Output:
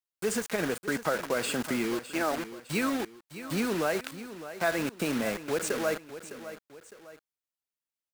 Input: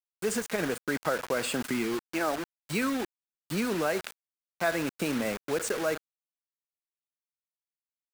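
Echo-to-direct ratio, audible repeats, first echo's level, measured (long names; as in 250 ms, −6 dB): −12.5 dB, 2, −13.0 dB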